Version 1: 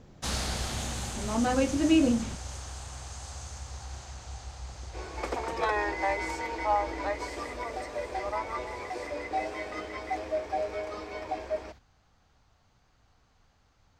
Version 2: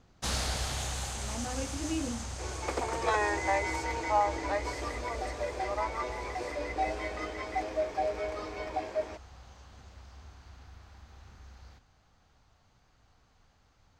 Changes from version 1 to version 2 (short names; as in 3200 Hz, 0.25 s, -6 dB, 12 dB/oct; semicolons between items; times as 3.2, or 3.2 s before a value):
speech -12.0 dB; second sound: entry -2.55 s